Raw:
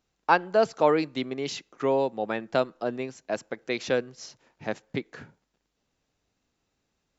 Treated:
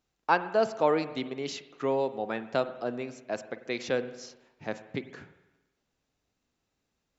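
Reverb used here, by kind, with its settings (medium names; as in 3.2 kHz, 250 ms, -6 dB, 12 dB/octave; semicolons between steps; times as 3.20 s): spring tank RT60 1.1 s, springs 45/49 ms, chirp 80 ms, DRR 12 dB; trim -3.5 dB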